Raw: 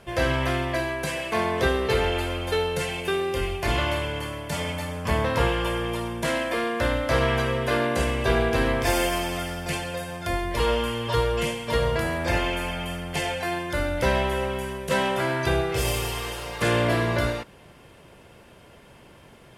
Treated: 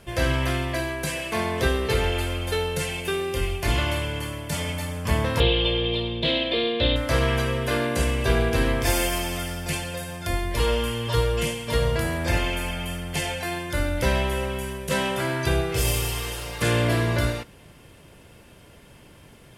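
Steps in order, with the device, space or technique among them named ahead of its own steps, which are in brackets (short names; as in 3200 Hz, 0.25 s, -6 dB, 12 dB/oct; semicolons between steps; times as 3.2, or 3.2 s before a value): smiley-face EQ (low shelf 180 Hz +4 dB; bell 810 Hz -3.5 dB 1.9 oct; high shelf 6200 Hz +6 dB); 5.4–6.96 EQ curve 220 Hz 0 dB, 460 Hz +5 dB, 1500 Hz -10 dB, 3800 Hz +15 dB, 5600 Hz -18 dB, 7900 Hz -27 dB; FDN reverb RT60 0.31 s, high-frequency decay 1×, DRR 17 dB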